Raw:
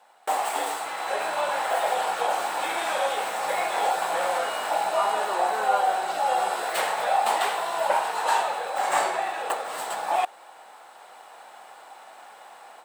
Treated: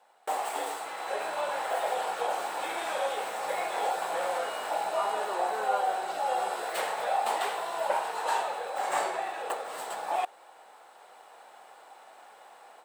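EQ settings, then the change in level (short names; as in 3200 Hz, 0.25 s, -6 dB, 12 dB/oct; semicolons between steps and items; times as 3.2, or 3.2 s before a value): bell 440 Hz +4.5 dB 0.81 oct; -6.5 dB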